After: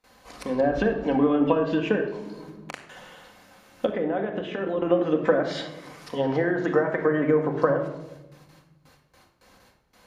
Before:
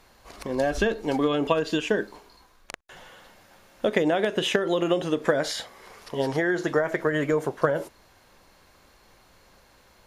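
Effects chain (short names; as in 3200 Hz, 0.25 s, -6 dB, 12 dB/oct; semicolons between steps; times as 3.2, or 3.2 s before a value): gate with hold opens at -46 dBFS; HPF 87 Hz 6 dB/oct; treble ducked by the level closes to 1400 Hz, closed at -20.5 dBFS; 3.86–4.82 level quantiser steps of 14 dB; 6.5–7.01 high shelf 8700 Hz +12 dB; reverb RT60 1.0 s, pre-delay 4 ms, DRR 3 dB; 2.07–2.73 three-band squash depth 70%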